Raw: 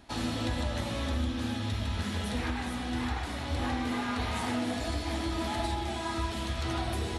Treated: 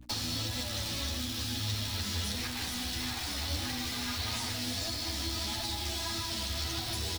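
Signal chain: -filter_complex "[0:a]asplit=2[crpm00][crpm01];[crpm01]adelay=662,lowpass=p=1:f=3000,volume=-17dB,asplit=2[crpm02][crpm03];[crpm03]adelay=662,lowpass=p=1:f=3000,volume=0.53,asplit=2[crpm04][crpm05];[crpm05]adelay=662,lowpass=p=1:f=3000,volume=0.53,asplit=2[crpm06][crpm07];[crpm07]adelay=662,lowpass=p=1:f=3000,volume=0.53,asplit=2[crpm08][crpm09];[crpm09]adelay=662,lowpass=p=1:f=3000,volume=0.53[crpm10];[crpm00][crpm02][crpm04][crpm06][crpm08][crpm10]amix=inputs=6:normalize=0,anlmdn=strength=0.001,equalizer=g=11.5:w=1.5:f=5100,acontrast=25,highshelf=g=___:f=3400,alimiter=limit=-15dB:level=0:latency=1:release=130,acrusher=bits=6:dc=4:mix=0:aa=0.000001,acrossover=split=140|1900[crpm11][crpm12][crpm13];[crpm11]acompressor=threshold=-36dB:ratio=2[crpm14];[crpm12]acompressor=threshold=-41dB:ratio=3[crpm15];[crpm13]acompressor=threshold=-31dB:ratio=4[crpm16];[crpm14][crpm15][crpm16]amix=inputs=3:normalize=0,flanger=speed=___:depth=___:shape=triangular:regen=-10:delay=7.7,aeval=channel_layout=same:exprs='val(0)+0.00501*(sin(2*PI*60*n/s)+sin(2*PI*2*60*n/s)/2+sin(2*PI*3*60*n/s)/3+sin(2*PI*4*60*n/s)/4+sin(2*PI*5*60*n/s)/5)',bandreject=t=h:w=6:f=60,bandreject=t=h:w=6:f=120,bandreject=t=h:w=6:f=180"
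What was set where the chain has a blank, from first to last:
5.5, 1.6, 4.4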